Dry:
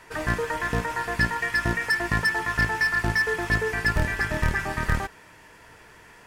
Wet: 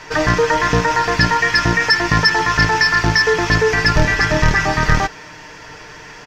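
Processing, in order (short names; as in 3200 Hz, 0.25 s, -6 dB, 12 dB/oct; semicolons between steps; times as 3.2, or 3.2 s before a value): resonant high shelf 7500 Hz -10 dB, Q 3; comb 6.6 ms, depth 42%; in parallel at +1 dB: limiter -19.5 dBFS, peak gain reduction 9.5 dB; on the sum: gain +5.5 dB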